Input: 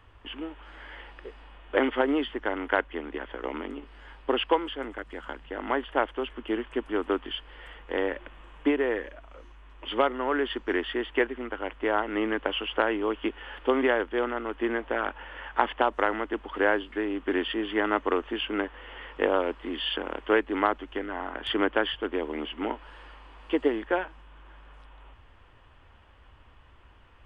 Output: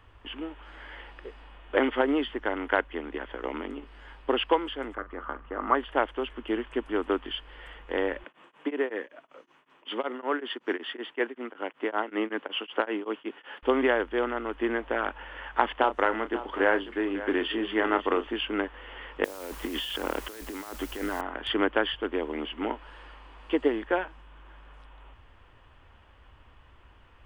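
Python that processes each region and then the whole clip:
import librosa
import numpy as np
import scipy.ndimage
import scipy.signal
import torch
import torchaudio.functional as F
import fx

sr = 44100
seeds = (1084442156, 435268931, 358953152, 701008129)

y = fx.chain(x, sr, fx.lowpass(hz=1700.0, slope=12),
    fx.peak_eq(hz=1200.0, db=14.0, octaves=0.26),
    fx.doubler(ms=44.0, db=-14.0), at=(4.95, 5.75))
y = fx.chain(y, sr, fx.highpass(hz=170.0, slope=24),
    fx.tremolo_abs(hz=5.3), at=(8.24, 13.63))
y = fx.chain(y, sr, fx.doubler(ms=31.0, db=-10.5),
    fx.echo_single(ms=545, db=-14.0), at=(15.72, 18.27))
y = fx.chain(y, sr, fx.over_compress(threshold_db=-36.0, ratio=-1.0),
    fx.quant_dither(seeds[0], bits=8, dither='triangular'), at=(19.24, 21.21))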